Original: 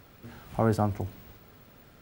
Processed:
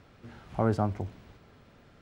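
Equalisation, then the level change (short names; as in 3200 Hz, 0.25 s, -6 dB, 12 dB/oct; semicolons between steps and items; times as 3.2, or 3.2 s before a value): air absorption 67 m; -1.5 dB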